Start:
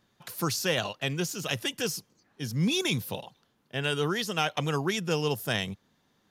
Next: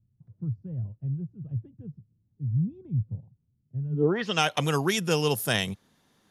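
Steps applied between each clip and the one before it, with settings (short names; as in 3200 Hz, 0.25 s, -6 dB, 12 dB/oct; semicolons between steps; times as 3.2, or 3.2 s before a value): low-pass sweep 110 Hz -> 11000 Hz, 3.89–4.44; gain +3 dB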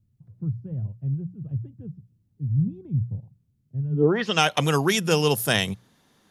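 notches 60/120/180 Hz; gain +4 dB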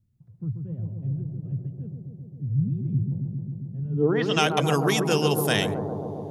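analogue delay 0.134 s, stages 1024, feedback 82%, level -5.5 dB; gain -2.5 dB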